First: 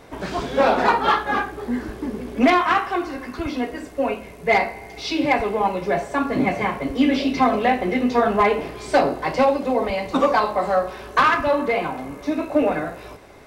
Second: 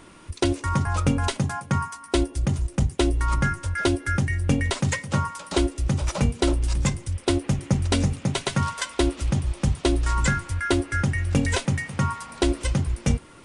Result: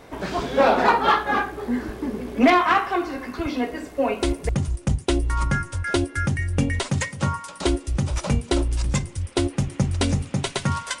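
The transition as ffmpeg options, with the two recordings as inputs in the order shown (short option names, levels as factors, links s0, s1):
-filter_complex "[0:a]apad=whole_dur=11,atrim=end=11,atrim=end=4.49,asetpts=PTS-STARTPTS[s0];[1:a]atrim=start=2.1:end=8.91,asetpts=PTS-STARTPTS[s1];[s0][s1]acrossfade=d=0.3:c1=log:c2=log"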